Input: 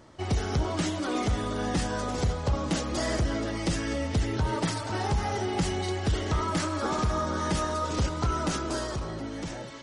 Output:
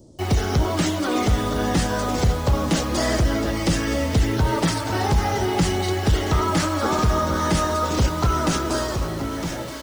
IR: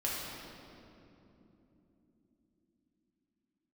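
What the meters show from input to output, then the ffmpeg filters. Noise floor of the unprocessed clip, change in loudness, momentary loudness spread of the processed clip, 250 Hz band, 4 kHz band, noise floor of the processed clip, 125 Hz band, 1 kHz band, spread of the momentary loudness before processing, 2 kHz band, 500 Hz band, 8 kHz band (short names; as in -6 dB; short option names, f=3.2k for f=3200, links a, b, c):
-37 dBFS, +7.5 dB, 3 LU, +7.5 dB, +7.5 dB, -29 dBFS, +7.5 dB, +7.0 dB, 3 LU, +7.5 dB, +7.0 dB, +7.5 dB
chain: -filter_complex "[0:a]acrossover=split=340|570|4900[a][b][c][d];[c]acrusher=bits=7:mix=0:aa=0.000001[e];[a][b][e][d]amix=inputs=4:normalize=0,aecho=1:1:978:0.224,volume=7dB"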